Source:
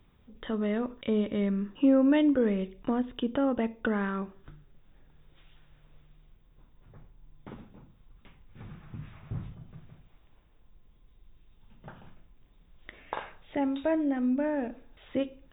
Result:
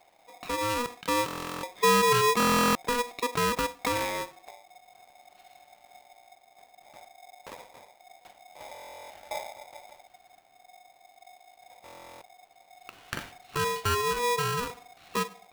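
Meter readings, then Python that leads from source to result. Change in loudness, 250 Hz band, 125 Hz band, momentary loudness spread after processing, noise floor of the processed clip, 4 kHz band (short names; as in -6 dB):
+1.5 dB, -9.0 dB, +1.5 dB, 23 LU, -61 dBFS, n/a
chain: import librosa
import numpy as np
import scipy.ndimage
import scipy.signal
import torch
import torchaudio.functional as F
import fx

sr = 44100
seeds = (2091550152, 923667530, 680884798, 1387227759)

y = fx.buffer_glitch(x, sr, at_s=(1.26, 2.38, 8.73, 11.84), block=1024, repeats=15)
y = y * np.sign(np.sin(2.0 * np.pi * 730.0 * np.arange(len(y)) / sr))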